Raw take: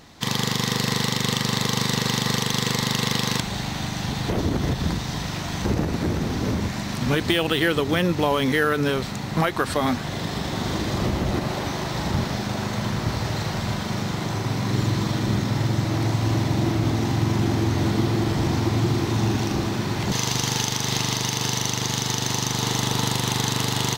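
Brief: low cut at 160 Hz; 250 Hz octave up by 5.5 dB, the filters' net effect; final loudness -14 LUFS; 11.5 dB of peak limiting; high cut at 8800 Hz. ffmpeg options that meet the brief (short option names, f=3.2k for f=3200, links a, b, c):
-af "highpass=160,lowpass=8.8k,equalizer=f=250:t=o:g=8.5,volume=12dB,alimiter=limit=-4.5dB:level=0:latency=1"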